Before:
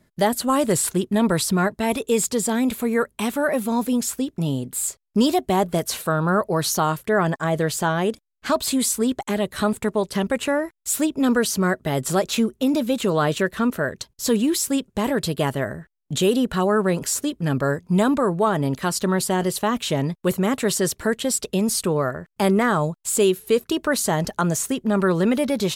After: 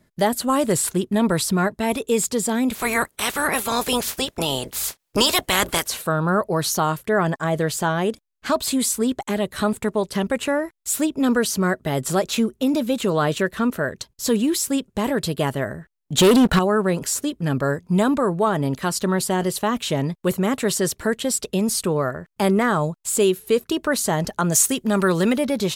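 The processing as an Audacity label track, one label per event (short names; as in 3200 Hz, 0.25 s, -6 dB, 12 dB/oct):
2.740000	5.860000	spectral limiter ceiling under each frame's peak by 25 dB
16.180000	16.590000	sample leveller passes 3
24.520000	25.330000	high shelf 2600 Hz +10 dB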